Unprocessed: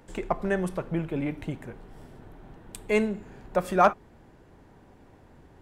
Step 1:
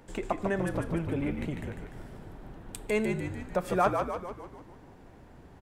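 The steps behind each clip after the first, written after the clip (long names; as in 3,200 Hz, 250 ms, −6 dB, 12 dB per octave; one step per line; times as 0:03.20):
downward compressor 1.5 to 1, threshold −32 dBFS, peak gain reduction 6.5 dB
on a send: echo with shifted repeats 148 ms, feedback 55%, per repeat −62 Hz, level −5 dB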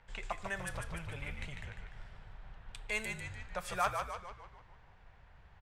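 low-pass that shuts in the quiet parts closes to 2,500 Hz, open at −24.5 dBFS
guitar amp tone stack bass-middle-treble 10-0-10
level +3.5 dB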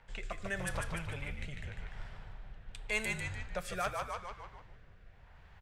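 mains-hum notches 60/120 Hz
rotating-speaker cabinet horn 0.85 Hz
level +5 dB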